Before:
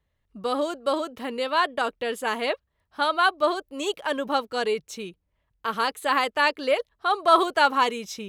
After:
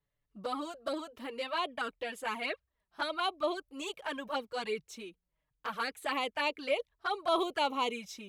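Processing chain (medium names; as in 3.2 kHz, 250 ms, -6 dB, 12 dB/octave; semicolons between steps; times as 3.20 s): dynamic bell 2.3 kHz, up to +7 dB, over -46 dBFS, Q 4.2; touch-sensitive flanger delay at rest 7 ms, full sweep at -18 dBFS; in parallel at -9 dB: saturation -17.5 dBFS, distortion -17 dB; on the sum: trim -9 dB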